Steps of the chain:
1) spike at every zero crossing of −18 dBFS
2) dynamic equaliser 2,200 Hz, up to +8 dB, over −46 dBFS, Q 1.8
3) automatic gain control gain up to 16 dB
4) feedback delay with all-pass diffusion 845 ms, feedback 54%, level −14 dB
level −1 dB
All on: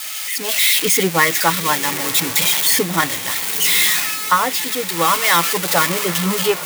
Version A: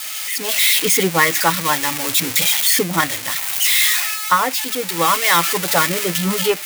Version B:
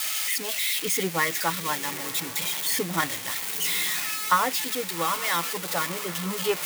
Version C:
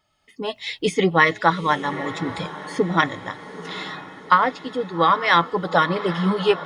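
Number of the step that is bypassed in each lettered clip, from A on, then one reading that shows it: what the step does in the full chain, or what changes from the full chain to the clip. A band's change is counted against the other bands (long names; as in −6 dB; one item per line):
4, echo-to-direct ratio −12.5 dB to none audible
3, change in integrated loudness −10.0 LU
1, change in crest factor +3.5 dB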